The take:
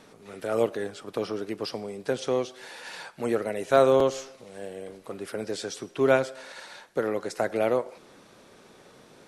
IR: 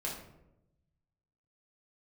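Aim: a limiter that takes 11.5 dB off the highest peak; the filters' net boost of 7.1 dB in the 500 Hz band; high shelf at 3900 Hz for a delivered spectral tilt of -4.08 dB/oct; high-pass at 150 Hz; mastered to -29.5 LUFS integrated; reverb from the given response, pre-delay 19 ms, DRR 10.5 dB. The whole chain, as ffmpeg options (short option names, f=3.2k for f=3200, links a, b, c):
-filter_complex "[0:a]highpass=150,equalizer=f=500:t=o:g=8.5,highshelf=f=3.9k:g=-6.5,alimiter=limit=-14dB:level=0:latency=1,asplit=2[a][b];[1:a]atrim=start_sample=2205,adelay=19[c];[b][c]afir=irnorm=-1:irlink=0,volume=-13dB[d];[a][d]amix=inputs=2:normalize=0,volume=-3.5dB"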